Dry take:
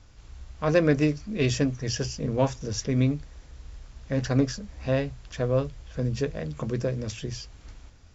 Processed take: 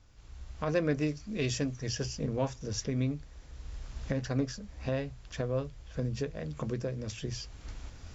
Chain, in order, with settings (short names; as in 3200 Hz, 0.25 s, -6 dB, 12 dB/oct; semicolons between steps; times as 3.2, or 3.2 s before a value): recorder AGC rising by 13 dB/s; 1.06–1.87 high shelf 4100 Hz +6 dB; gain -8 dB